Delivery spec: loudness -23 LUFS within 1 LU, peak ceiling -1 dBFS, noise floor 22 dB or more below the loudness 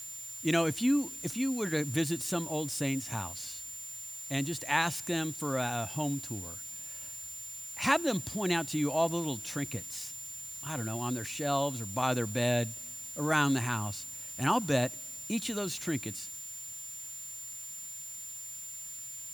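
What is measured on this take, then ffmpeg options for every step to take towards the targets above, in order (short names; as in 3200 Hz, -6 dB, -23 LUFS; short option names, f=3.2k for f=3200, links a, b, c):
steady tone 7200 Hz; tone level -41 dBFS; noise floor -43 dBFS; noise floor target -55 dBFS; loudness -32.5 LUFS; peak -11.0 dBFS; loudness target -23.0 LUFS
-> -af "bandreject=f=7.2k:w=30"
-af "afftdn=nr=12:nf=-43"
-af "volume=9.5dB"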